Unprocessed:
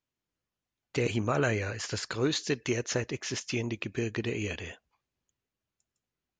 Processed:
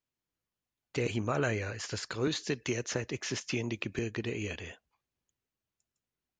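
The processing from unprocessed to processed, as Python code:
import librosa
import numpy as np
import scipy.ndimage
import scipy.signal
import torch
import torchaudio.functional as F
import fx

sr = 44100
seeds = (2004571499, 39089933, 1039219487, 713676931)

y = fx.band_squash(x, sr, depth_pct=70, at=(2.27, 3.99))
y = y * 10.0 ** (-3.0 / 20.0)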